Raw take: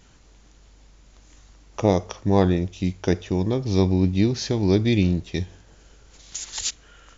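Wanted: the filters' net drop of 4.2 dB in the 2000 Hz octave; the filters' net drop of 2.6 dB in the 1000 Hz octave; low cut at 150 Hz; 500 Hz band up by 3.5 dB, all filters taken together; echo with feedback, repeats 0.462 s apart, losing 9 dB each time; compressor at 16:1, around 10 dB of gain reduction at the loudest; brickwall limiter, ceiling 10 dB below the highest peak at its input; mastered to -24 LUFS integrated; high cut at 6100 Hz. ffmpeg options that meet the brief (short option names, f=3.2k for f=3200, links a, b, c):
-af "highpass=150,lowpass=6.1k,equalizer=f=500:t=o:g=6,equalizer=f=1k:t=o:g=-6,equalizer=f=2k:t=o:g=-4,acompressor=threshold=-21dB:ratio=16,alimiter=limit=-19.5dB:level=0:latency=1,aecho=1:1:462|924|1386|1848:0.355|0.124|0.0435|0.0152,volume=7.5dB"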